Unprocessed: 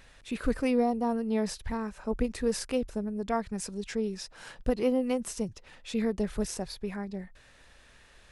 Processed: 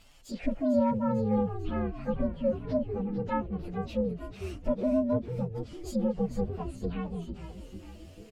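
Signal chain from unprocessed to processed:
partials spread apart or drawn together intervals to 126%
treble cut that deepens with the level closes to 1,100 Hz, closed at −29.5 dBFS
echo with shifted repeats 448 ms, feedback 59%, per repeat −130 Hz, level −9 dB
level +2 dB

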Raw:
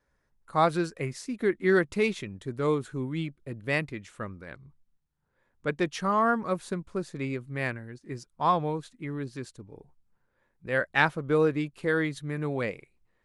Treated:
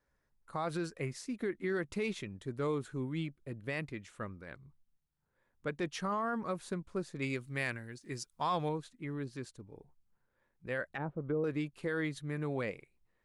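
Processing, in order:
0:10.89–0:11.44: treble cut that deepens with the level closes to 540 Hz, closed at −23 dBFS
brickwall limiter −21 dBFS, peak gain reduction 10.5 dB
0:07.22–0:08.69: high-shelf EQ 2,300 Hz +12 dB
level −5 dB

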